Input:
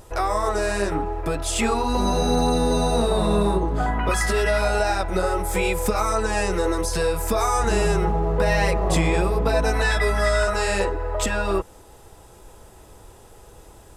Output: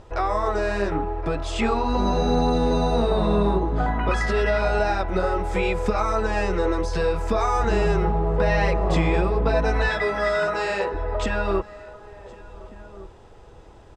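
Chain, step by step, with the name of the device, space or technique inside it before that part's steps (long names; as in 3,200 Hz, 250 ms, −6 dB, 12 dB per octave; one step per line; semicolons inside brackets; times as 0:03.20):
0:09.88–0:10.93: high-pass filter 140 Hz → 370 Hz 12 dB per octave
shout across a valley (high-frequency loss of the air 150 metres; slap from a distant wall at 250 metres, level −18 dB)
single-tap delay 1,066 ms −24 dB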